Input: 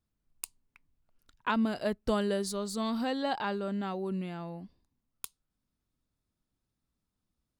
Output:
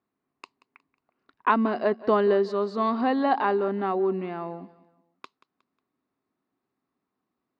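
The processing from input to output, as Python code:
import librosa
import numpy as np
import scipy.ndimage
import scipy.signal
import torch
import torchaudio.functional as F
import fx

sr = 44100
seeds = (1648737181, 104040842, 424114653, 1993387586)

p1 = fx.cabinet(x, sr, low_hz=210.0, low_slope=12, high_hz=3800.0, hz=(270.0, 390.0, 740.0, 1100.0, 1900.0, 3300.0), db=(6, 9, 7, 9, 4, -8))
p2 = p1 + fx.echo_feedback(p1, sr, ms=181, feedback_pct=38, wet_db=-19, dry=0)
y = p2 * 10.0 ** (3.5 / 20.0)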